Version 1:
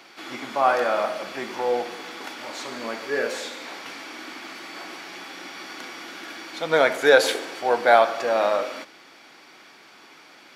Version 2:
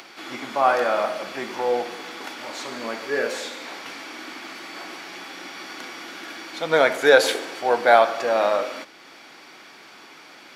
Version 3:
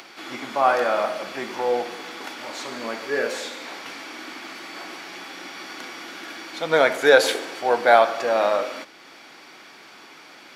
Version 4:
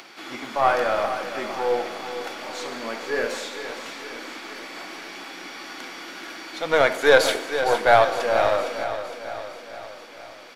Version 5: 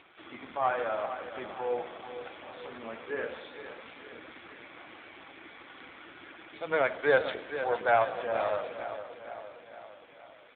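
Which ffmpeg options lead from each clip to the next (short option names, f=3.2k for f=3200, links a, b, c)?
-af "acompressor=mode=upward:threshold=-41dB:ratio=2.5,volume=1dB"
-af anull
-af "aeval=exprs='0.891*(cos(1*acos(clip(val(0)/0.891,-1,1)))-cos(1*PI/2))+0.0631*(cos(4*acos(clip(val(0)/0.891,-1,1)))-cos(4*PI/2))+0.02*(cos(6*acos(clip(val(0)/0.891,-1,1)))-cos(6*PI/2))+0.0282*(cos(8*acos(clip(val(0)/0.891,-1,1)))-cos(8*PI/2))':c=same,aecho=1:1:460|920|1380|1840|2300|2760:0.299|0.167|0.0936|0.0524|0.0294|0.0164,volume=-1dB"
-af "volume=-8dB" -ar 8000 -c:a libopencore_amrnb -b:a 7400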